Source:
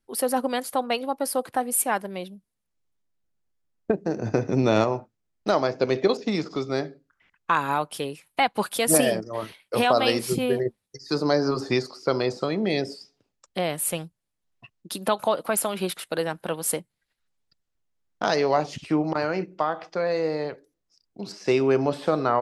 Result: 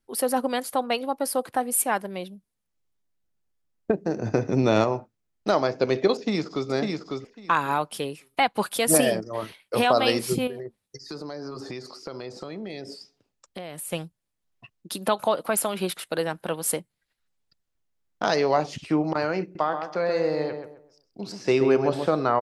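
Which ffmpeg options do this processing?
-filter_complex "[0:a]asplit=2[a][b];[b]afade=t=in:st=6.14:d=0.01,afade=t=out:st=6.69:d=0.01,aecho=0:1:550|1100|1650:0.668344|0.100252|0.0150377[c];[a][c]amix=inputs=2:normalize=0,asettb=1/sr,asplit=3[d][e][f];[d]atrim=end=10.474[g];[e]atrim=start=10.47:end=13.92,asetpts=PTS-STARTPTS,afade=t=in:d=0.004:c=qsin,afade=t=out:st=3.446:d=0.004:c=qsin,acompressor=threshold=-33dB:ratio=5:attack=3.2:release=140:knee=1:detection=peak[h];[f]atrim=start=13.916[i];[g][h]acrossfade=d=0.004:c1=hsin:c2=qsin[j];[j][i]acrossfade=d=0.004:c1=qsin:c2=hsin,asettb=1/sr,asplit=3[k][l][m];[k]atrim=end=19.424[n];[l]atrim=start=19.42:end=22.08,asetpts=PTS-STARTPTS,afade=t=in:d=0.004:c=qsin,afade=t=out:st=2.656:d=0.004:c=qsin,asplit=2[o][p];[p]adelay=131,lowpass=f=1.9k:p=1,volume=-6dB,asplit=2[q][r];[r]adelay=131,lowpass=f=1.9k:p=1,volume=0.31,asplit=2[s][t];[t]adelay=131,lowpass=f=1.9k:p=1,volume=0.31,asplit=2[u][v];[v]adelay=131,lowpass=f=1.9k:p=1,volume=0.31[w];[o][q][s][u][w]amix=inputs=5:normalize=0,atrim=end_sample=117306[x];[m]atrim=start=22.076[y];[n][x]acrossfade=d=0.004:c1=hsin:c2=qsin[z];[z][y]acrossfade=d=0.004:c1=qsin:c2=hsin"

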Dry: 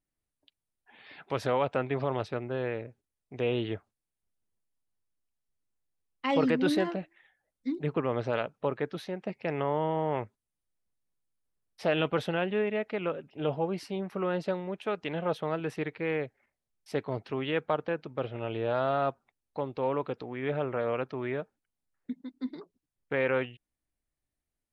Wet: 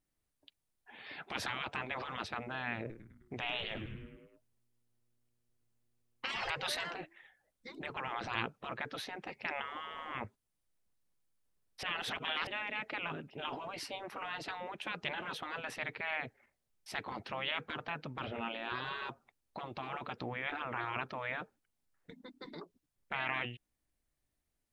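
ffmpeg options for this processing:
-filter_complex "[0:a]asettb=1/sr,asplit=3[a][b][c];[a]atrim=end=2.794[d];[b]atrim=start=2.79:end=6.5,asetpts=PTS-STARTPTS,afade=t=in:d=0.004:c=qsin,afade=t=out:st=3.706:d=0.004:c=qsin,asplit=7[e][f][g][h][i][j][k];[f]adelay=103,afreqshift=-120,volume=-11.5dB[l];[g]adelay=206,afreqshift=-240,volume=-16.4dB[m];[h]adelay=309,afreqshift=-360,volume=-21.3dB[n];[i]adelay=412,afreqshift=-480,volume=-26.1dB[o];[j]adelay=515,afreqshift=-600,volume=-31dB[p];[k]adelay=618,afreqshift=-720,volume=-35.9dB[q];[e][l][m][n][o][p][q]amix=inputs=7:normalize=0,atrim=end_sample=163611[r];[c]atrim=start=6.496[s];[d][r]acrossfade=d=0.004:c1=hsin:c2=qsin[t];[t][s]acrossfade=d=0.004:c1=qsin:c2=hsin,asplit=3[u][v][w];[u]atrim=end=11.832[x];[v]atrim=start=11.828:end=12.472,asetpts=PTS-STARTPTS,areverse[y];[w]atrim=start=12.468[z];[x][y]acrossfade=d=0.004:c1=hsin:c2=hsin[aa];[aa][z]acrossfade=d=0.004:c1=hsin:c2=hsin,afftfilt=real='re*lt(hypot(re,im),0.0631)':imag='im*lt(hypot(re,im),0.0631)':win_size=1024:overlap=0.75,volume=3dB"

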